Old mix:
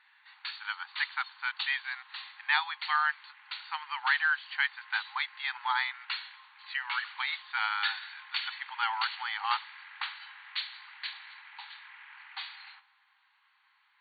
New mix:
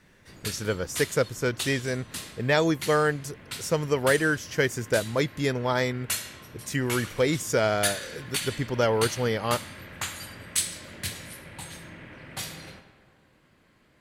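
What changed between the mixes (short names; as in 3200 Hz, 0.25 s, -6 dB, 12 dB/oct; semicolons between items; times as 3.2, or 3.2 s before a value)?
background: send +11.0 dB; master: remove brick-wall FIR band-pass 770–4600 Hz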